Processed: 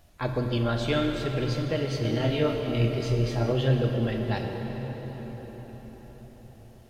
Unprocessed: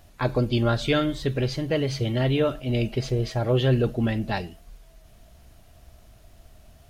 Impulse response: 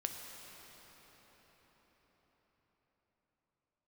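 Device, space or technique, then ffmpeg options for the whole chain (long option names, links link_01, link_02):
cathedral: -filter_complex "[1:a]atrim=start_sample=2205[link_01];[0:a][link_01]afir=irnorm=-1:irlink=0,asettb=1/sr,asplit=3[link_02][link_03][link_04];[link_02]atrim=end=2.024[link_05];[link_03]atrim=start=2.02:end=3.52,asetpts=PTS-STARTPTS,afade=type=in:duration=0.004:curve=qsin,afade=type=out:start_time=1.496:duration=0.004:curve=qsin,asplit=2[link_06][link_07];[link_07]adelay=26,volume=-3.5dB[link_08];[link_06][link_08]amix=inputs=2:normalize=0,atrim=end_sample=66150[link_09];[link_04]atrim=start=3.516[link_10];[link_05][link_09]acrossfade=duration=0.004:curve1=hsin:curve2=qsin[link_11];[link_11][link_10]acrossfade=duration=0.004:curve1=qsin:curve2=hsin,volume=-3.5dB"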